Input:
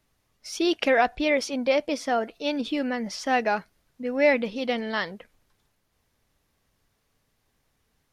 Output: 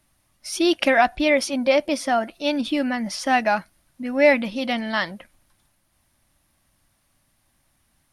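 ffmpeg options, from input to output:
-af "superequalizer=7b=0.251:16b=2.51,volume=4.5dB"

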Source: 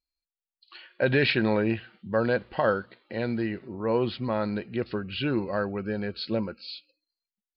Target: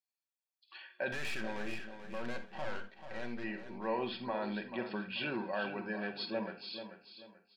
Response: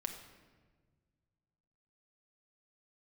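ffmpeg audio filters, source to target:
-filter_complex "[0:a]highpass=330,bandreject=f=4.2k:w=14,aecho=1:1:1.2:0.52,alimiter=limit=-20.5dB:level=0:latency=1:release=21,asettb=1/sr,asplit=3[a][b][c];[a]atrim=end=1.124[d];[b]atrim=start=1.12:end=3.44,asetpts=PTS-STARTPTS,afade=t=in:d=0.004:c=qsin,afade=t=out:st=2.316:d=0.004:c=qsin,aeval=exprs='(tanh(39.8*val(0)+0.7)-tanh(0.7))/39.8':c=same[e];[c]atrim=start=3.436[f];[d][e]acrossfade=d=0.004:c1=hsin:c2=qsin[g];[g][f]acrossfade=d=0.004:c1=qsin:c2=hsin,aecho=1:1:437|874|1311|1748:0.316|0.101|0.0324|0.0104[h];[1:a]atrim=start_sample=2205,atrim=end_sample=3969[i];[h][i]afir=irnorm=-1:irlink=0,volume=-3.5dB"

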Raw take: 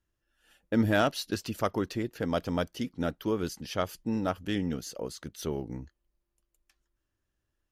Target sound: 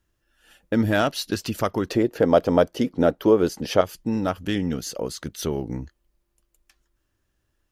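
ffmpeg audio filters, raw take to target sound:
-filter_complex "[0:a]asettb=1/sr,asplit=3[a][b][c];[a]atrim=end=1.904[d];[b]atrim=start=1.9:end=3.81,asetpts=PTS-STARTPTS,afade=t=in:d=0.004:c=qsin,afade=t=out:st=1.906:d=0.004:c=qsin,equalizer=f=530:t=o:w=2.1:g=12[e];[c]atrim=start=3.806[f];[d][e]acrossfade=d=0.004:c1=hsin:c2=qsin[g];[g][f]acrossfade=d=0.004:c1=qsin:c2=hsin,asplit=2[h][i];[i]acompressor=threshold=-32dB:ratio=6,volume=3dB[j];[h][j]amix=inputs=2:normalize=0,volume=1dB"

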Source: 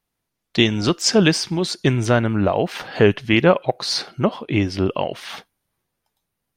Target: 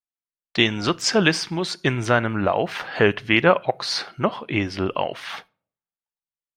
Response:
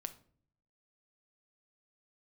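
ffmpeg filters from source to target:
-filter_complex "[0:a]agate=range=-27dB:threshold=-44dB:ratio=16:detection=peak,equalizer=f=1.5k:w=0.48:g=9,asplit=2[a][b];[1:a]atrim=start_sample=2205[c];[b][c]afir=irnorm=-1:irlink=0,volume=-9dB[d];[a][d]amix=inputs=2:normalize=0,volume=-8dB"

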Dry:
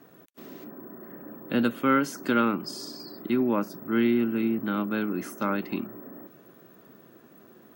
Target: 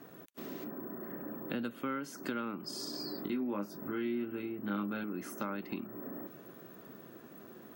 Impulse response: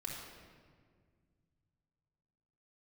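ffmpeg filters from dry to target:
-filter_complex "[0:a]acompressor=threshold=-38dB:ratio=4,asettb=1/sr,asplit=3[a][b][c];[a]atrim=end=2.914[d];[b]atrim=start=2.91:end=5.04,asetpts=PTS-STARTPTS,afade=t=in:d=0.004:c=qsin,afade=t=out:st=2.126:d=0.004:c=qsin,asplit=2[e][f];[f]adelay=20,volume=-4dB[g];[e][g]amix=inputs=2:normalize=0,atrim=end_sample=93933[h];[c]atrim=start=5.036[i];[d][h]acrossfade=d=0.004:c1=hsin:c2=qsin[j];[j][i]acrossfade=d=0.004:c1=qsin:c2=hsin,volume=1dB"

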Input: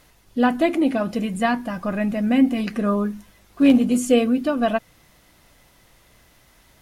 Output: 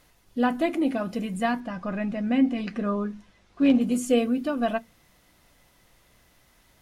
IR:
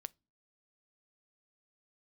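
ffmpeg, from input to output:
-filter_complex "[0:a]asettb=1/sr,asplit=3[a][b][c];[a]atrim=end=1.604[d];[b]atrim=start=1.6:end=3.81,asetpts=PTS-STARTPTS,afade=t=in:d=0.004:c=qsin,afade=t=out:st=2.206:d=0.004:c=qsin,lowpass=5.7k[e];[c]atrim=start=3.806[f];[d][e]acrossfade=d=0.004:c1=hsin:c2=qsin[g];[g][f]acrossfade=d=0.004:c1=qsin:c2=hsin[h];[1:a]atrim=start_sample=2205,asetrate=61740,aresample=44100[i];[h][i]afir=irnorm=-1:irlink=0,volume=2dB"

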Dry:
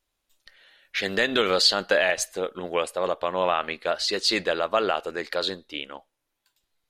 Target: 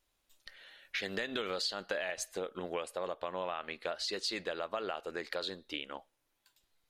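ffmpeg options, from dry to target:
-af "acompressor=threshold=-36dB:ratio=4"

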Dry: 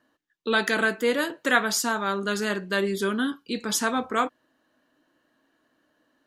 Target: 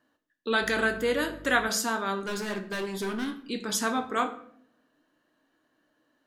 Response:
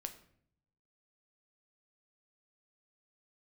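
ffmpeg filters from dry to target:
-filter_complex "[0:a]asettb=1/sr,asplit=3[a][b][c];[a]atrim=end=2.204[d];[b]atrim=start=2.2:end=3.39,asetpts=PTS-STARTPTS,afade=t=in:d=0.004:c=qsin,afade=t=out:st=1.186:d=0.004:c=qsin,asoftclip=type=hard:threshold=-26dB[e];[c]atrim=start=3.386[f];[d][e]acrossfade=d=0.004:c1=hsin:c2=qsin[g];[g][f]acrossfade=d=0.004:c1=qsin:c2=hsin[h];[1:a]atrim=start_sample=2205[i];[h][i]afir=irnorm=-1:irlink=0,asettb=1/sr,asplit=3[j][k][l];[j]atrim=end=0.624[m];[k]atrim=start=0.62:end=1.69,asetpts=PTS-STARTPTS,afade=t=in:d=0.004:c=qsin,afade=t=out:st=1.066:d=0.004:c=qsin,aeval=exprs='val(0)+0.00501*(sin(2*PI*50*n/s)+sin(2*PI*2*50*n/s)/2+sin(2*PI*3*50*n/s)/3+sin(2*PI*4*50*n/s)/4+sin(2*PI*5*50*n/s)/5)':c=same[n];[l]atrim=start=1.686[o];[m][n]acrossfade=d=0.004:c1=hsin:c2=qsin[p];[p][o]acrossfade=d=0.004:c1=qsin:c2=hsin"

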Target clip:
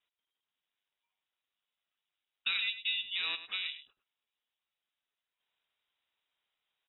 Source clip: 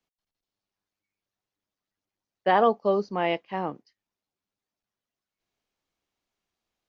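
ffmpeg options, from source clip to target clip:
-filter_complex "[0:a]acompressor=threshold=-35dB:ratio=3,aeval=exprs='val(0)*sin(2*PI*710*n/s)':c=same,asplit=2[a][b];[b]aecho=0:1:102:0.237[c];[a][c]amix=inputs=2:normalize=0,lowpass=f=3.3k:t=q:w=0.5098,lowpass=f=3.3k:t=q:w=0.6013,lowpass=f=3.3k:t=q:w=0.9,lowpass=f=3.3k:t=q:w=2.563,afreqshift=-3900,volume=3.5dB"

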